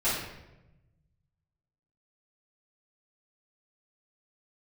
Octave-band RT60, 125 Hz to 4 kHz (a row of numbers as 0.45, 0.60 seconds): 2.0, 1.4, 1.1, 0.85, 0.85, 0.65 seconds